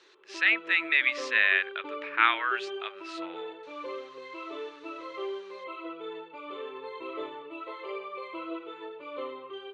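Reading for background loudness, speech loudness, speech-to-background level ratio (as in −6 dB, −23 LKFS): −39.5 LKFS, −25.0 LKFS, 14.5 dB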